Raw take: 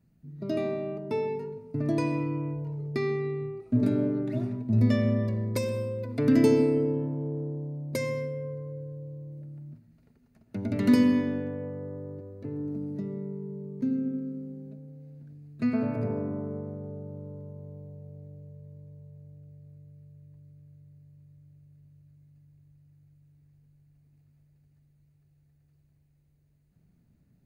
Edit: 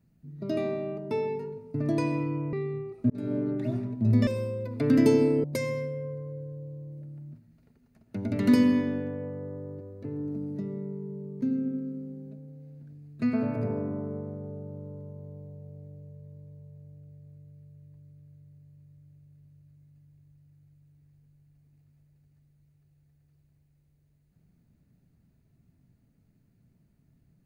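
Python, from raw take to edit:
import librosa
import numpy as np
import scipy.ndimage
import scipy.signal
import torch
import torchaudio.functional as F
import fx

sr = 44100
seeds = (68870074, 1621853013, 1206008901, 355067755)

y = fx.edit(x, sr, fx.cut(start_s=2.53, length_s=0.68),
    fx.fade_in_span(start_s=3.78, length_s=0.48, curve='qsin'),
    fx.cut(start_s=4.95, length_s=0.7),
    fx.cut(start_s=6.82, length_s=1.02), tone=tone)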